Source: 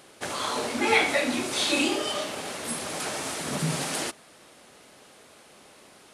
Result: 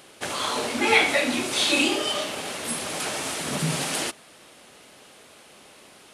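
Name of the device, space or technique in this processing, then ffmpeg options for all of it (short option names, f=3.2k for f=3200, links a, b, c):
presence and air boost: -af "equalizer=f=2.9k:t=o:w=0.81:g=3.5,highshelf=f=11k:g=3.5,volume=1.5dB"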